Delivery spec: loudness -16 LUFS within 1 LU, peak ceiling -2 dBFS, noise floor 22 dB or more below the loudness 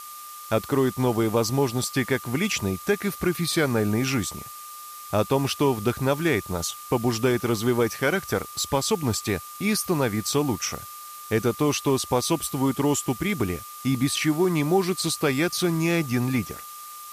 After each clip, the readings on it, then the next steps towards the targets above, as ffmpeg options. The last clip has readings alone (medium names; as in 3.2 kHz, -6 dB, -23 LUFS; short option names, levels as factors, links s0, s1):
steady tone 1.2 kHz; tone level -40 dBFS; noise floor -40 dBFS; noise floor target -47 dBFS; loudness -24.5 LUFS; peak level -9.0 dBFS; loudness target -16.0 LUFS
-> -af "bandreject=f=1200:w=30"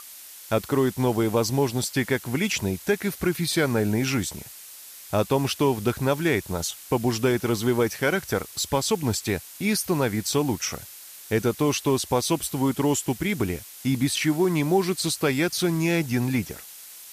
steady tone not found; noise floor -44 dBFS; noise floor target -47 dBFS
-> -af "afftdn=nr=6:nf=-44"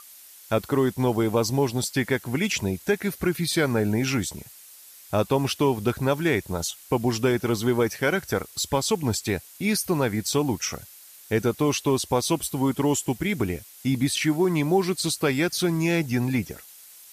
noise floor -48 dBFS; loudness -24.5 LUFS; peak level -9.0 dBFS; loudness target -16.0 LUFS
-> -af "volume=2.66,alimiter=limit=0.794:level=0:latency=1"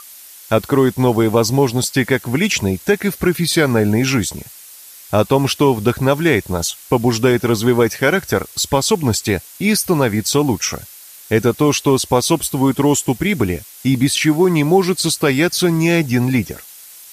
loudness -16.5 LUFS; peak level -2.0 dBFS; noise floor -40 dBFS